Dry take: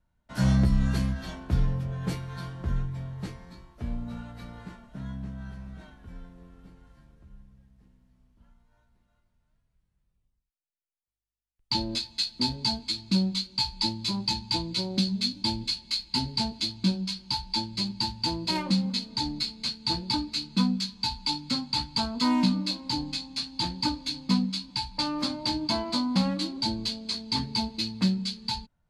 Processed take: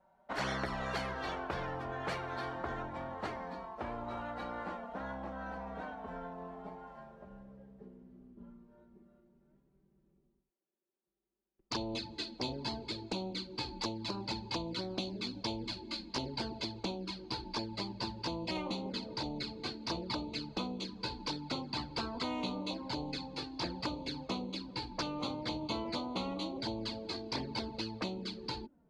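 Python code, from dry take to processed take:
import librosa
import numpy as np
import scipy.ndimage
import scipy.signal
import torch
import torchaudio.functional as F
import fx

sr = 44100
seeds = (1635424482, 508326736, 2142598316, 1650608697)

y = fx.filter_sweep_bandpass(x, sr, from_hz=720.0, to_hz=330.0, start_s=7.15, end_s=8.3, q=3.3)
y = fx.env_flanger(y, sr, rest_ms=5.2, full_db=-34.5)
y = fx.spectral_comp(y, sr, ratio=4.0)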